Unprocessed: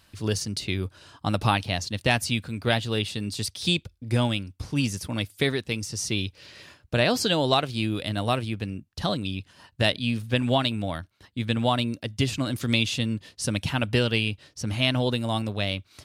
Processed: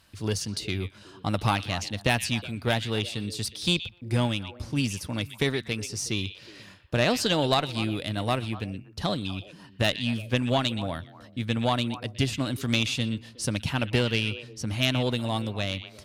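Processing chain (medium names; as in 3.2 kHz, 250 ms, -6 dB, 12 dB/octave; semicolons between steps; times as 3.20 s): repeats whose band climbs or falls 122 ms, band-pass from 2.8 kHz, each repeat -1.4 oct, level -10 dB; Chebyshev shaper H 4 -15 dB, 6 -25 dB, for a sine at -7 dBFS; trim -1.5 dB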